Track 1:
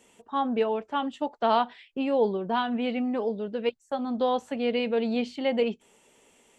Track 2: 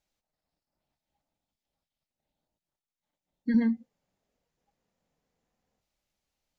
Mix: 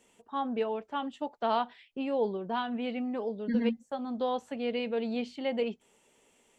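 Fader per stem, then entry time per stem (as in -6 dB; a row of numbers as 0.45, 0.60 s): -5.5, -4.5 dB; 0.00, 0.00 s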